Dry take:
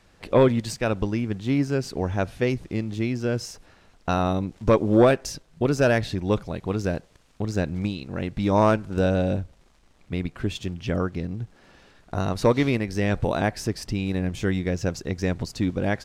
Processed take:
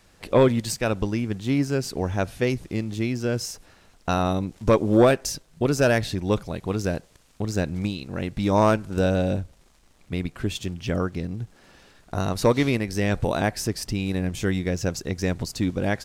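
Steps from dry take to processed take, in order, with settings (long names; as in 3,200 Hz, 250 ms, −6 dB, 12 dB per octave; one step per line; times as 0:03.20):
high-shelf EQ 6,800 Hz +10.5 dB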